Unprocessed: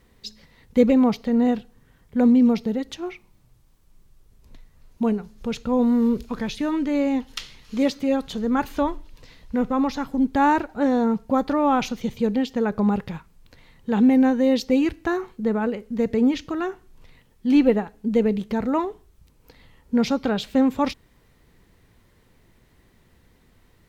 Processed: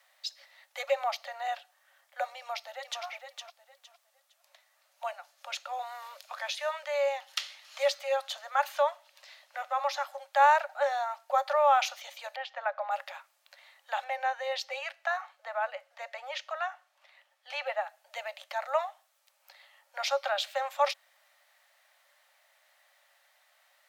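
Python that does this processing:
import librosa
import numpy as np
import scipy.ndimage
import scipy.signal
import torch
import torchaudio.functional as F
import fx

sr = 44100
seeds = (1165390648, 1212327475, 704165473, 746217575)

y = fx.echo_throw(x, sr, start_s=2.38, length_s=0.65, ms=460, feedback_pct=25, wet_db=-6.0)
y = fx.lowpass(y, sr, hz=2600.0, slope=12, at=(12.36, 12.91))
y = fx.high_shelf(y, sr, hz=6200.0, db=-11.5, at=(14.04, 17.81))
y = scipy.signal.sosfilt(scipy.signal.cheby1(10, 1.0, 550.0, 'highpass', fs=sr, output='sos'), y)
y = fx.peak_eq(y, sr, hz=1800.0, db=2.0, octaves=0.22)
y = fx.notch(y, sr, hz=1000.0, q=8.3)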